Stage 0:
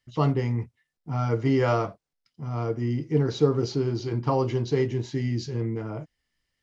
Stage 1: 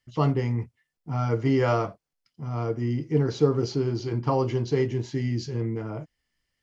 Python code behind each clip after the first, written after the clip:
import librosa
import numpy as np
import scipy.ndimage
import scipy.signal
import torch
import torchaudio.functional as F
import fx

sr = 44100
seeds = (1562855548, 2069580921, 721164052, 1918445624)

y = fx.notch(x, sr, hz=3800.0, q=16.0)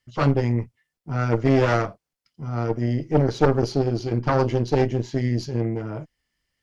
y = fx.cheby_harmonics(x, sr, harmonics=(3, 4, 6), levels_db=(-18, -7, -20), full_scale_db=-8.0)
y = 10.0 ** (-13.5 / 20.0) * np.tanh(y / 10.0 ** (-13.5 / 20.0))
y = y * librosa.db_to_amplitude(6.0)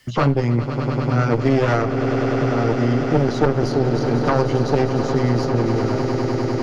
y = fx.echo_swell(x, sr, ms=100, loudest=8, wet_db=-14.5)
y = fx.band_squash(y, sr, depth_pct=70)
y = y * librosa.db_to_amplitude(2.0)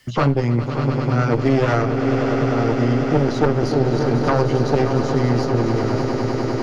y = x + 10.0 ** (-10.5 / 20.0) * np.pad(x, (int(578 * sr / 1000.0), 0))[:len(x)]